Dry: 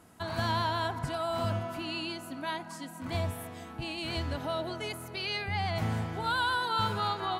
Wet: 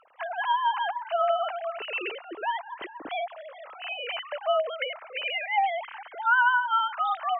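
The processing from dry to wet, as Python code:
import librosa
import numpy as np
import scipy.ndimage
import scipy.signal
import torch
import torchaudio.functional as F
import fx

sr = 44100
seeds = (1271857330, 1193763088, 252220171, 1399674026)

y = fx.sine_speech(x, sr)
y = fx.rider(y, sr, range_db=3, speed_s=0.5)
y = y * librosa.db_to_amplitude(5.0)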